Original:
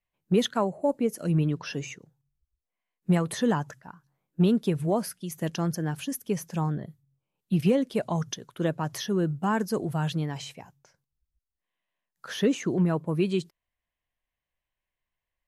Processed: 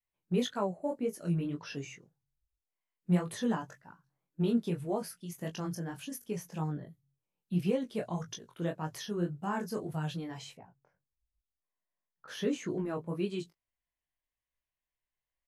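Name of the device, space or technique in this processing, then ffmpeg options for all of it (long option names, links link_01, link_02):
double-tracked vocal: -filter_complex "[0:a]asettb=1/sr,asplit=3[link_01][link_02][link_03];[link_01]atrim=end=10.554[link_04];[link_02]atrim=start=10.55:end=12.28,asetpts=PTS-STARTPTS,afade=type=in:duration=0.004:curve=qsin,afade=type=out:start_time=1.726:duration=0.004:curve=qsin,lowpass=1500[link_05];[link_03]atrim=start=12.276[link_06];[link_04][link_05]acrossfade=duration=0.004:curve1=hsin:curve2=qsin[link_07];[link_07][link_06]acrossfade=duration=0.004:curve1=qsin:curve2=hsin,asplit=2[link_08][link_09];[link_09]adelay=17,volume=-10dB[link_10];[link_08][link_10]amix=inputs=2:normalize=0,flanger=delay=19:depth=4.9:speed=1.8,volume=-5dB"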